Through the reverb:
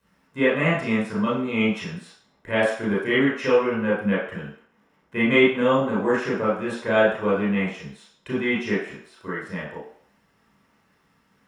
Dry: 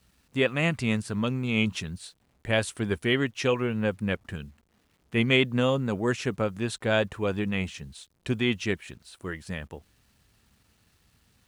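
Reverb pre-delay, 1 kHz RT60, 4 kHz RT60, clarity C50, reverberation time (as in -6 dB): 25 ms, 0.65 s, 0.60 s, 2.0 dB, 0.60 s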